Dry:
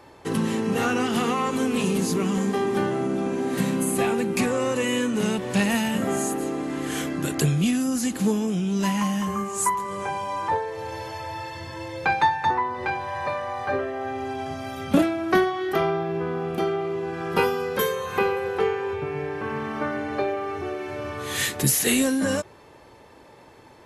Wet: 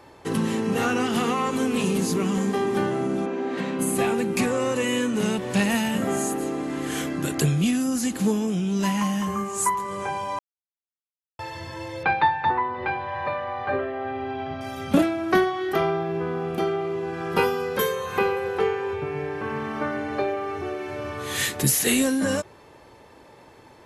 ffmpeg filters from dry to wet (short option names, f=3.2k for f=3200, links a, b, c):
-filter_complex "[0:a]asplit=3[a][b][c];[a]afade=t=out:st=3.25:d=0.02[d];[b]highpass=270,lowpass=3.6k,afade=t=in:st=3.25:d=0.02,afade=t=out:st=3.78:d=0.02[e];[c]afade=t=in:st=3.78:d=0.02[f];[d][e][f]amix=inputs=3:normalize=0,asettb=1/sr,asplit=3[g][h][i];[g]atrim=end=12.034[j];[h]atrim=start=12.03:end=14.61,asetpts=PTS-STARTPTS,afade=t=in:d=0.004:c=qsin,afade=t=out:st=2.576:d=0.004:c=qsin,lowpass=f=3.8k:w=0.5412,lowpass=f=3.8k:w=1.3066[k];[i]atrim=start=14.606[l];[j][k]acrossfade=d=0.004:c1=hsin:c2=qsin[m];[m][l]acrossfade=d=0.004:c1=qsin:c2=hsin,asplit=3[n][o][p];[n]atrim=end=10.39,asetpts=PTS-STARTPTS,afade=t=out:st=10.386:d=0.004:c=hsin[q];[o]atrim=start=10.39:end=11.39,asetpts=PTS-STARTPTS,volume=0[r];[p]atrim=start=11.39,asetpts=PTS-STARTPTS,afade=t=in:d=0.004:c=hsin[s];[q][r][s]concat=n=3:v=0:a=1"